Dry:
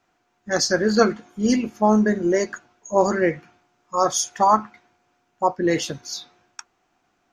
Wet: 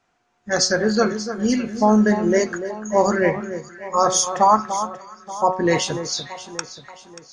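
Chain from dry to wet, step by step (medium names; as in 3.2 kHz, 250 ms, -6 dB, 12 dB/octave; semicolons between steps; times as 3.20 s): peaking EQ 320 Hz -7.5 dB 0.23 oct; de-hum 185.3 Hz, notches 23; in parallel at -3 dB: peak limiter -11 dBFS, peak gain reduction 8.5 dB; on the sum: level rider; on a send: echo whose repeats swap between lows and highs 292 ms, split 1.5 kHz, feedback 64%, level -10 dB; on the sum: resampled via 22.05 kHz; trim -4 dB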